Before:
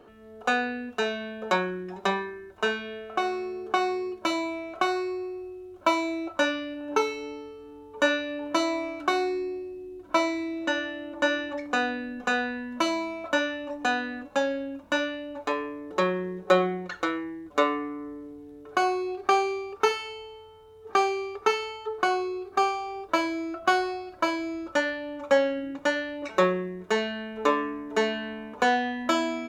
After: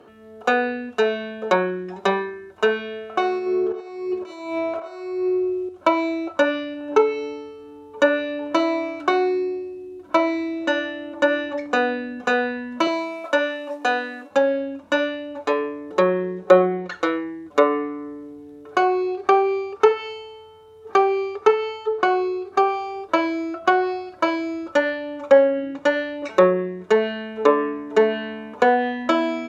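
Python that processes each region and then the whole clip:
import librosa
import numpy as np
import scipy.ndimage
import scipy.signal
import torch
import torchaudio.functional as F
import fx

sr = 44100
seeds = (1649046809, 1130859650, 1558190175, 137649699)

y = fx.chain(x, sr, fx.over_compress(threshold_db=-34.0, ratio=-0.5),
    fx.echo_banded(ms=82, feedback_pct=47, hz=810.0, wet_db=-4.5), at=(3.38, 5.69))
y = fx.chain(y, sr, fx.highpass(hz=320.0, slope=12),
    fx.mod_noise(seeds[0], snr_db=28), at=(12.87, 14.31))
y = fx.dynamic_eq(y, sr, hz=470.0, q=2.1, threshold_db=-40.0, ratio=4.0, max_db=7)
y = fx.env_lowpass_down(y, sr, base_hz=1800.0, full_db=-16.5)
y = scipy.signal.sosfilt(scipy.signal.butter(2, 84.0, 'highpass', fs=sr, output='sos'), y)
y = y * librosa.db_to_amplitude(4.0)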